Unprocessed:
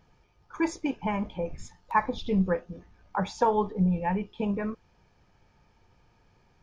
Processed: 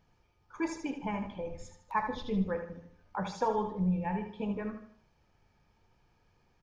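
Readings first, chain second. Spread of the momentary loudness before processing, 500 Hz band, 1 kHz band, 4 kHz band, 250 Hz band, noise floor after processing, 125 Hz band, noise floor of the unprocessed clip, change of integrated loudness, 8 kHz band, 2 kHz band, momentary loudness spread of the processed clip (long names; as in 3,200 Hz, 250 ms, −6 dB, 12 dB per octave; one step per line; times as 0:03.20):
11 LU, −6.0 dB, −6.0 dB, −5.5 dB, −5.5 dB, −70 dBFS, −5.0 dB, −65 dBFS, −5.5 dB, can't be measured, −6.0 dB, 11 LU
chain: hum removal 57.72 Hz, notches 36
on a send: repeating echo 77 ms, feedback 39%, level −8.5 dB
on the sum: level −6 dB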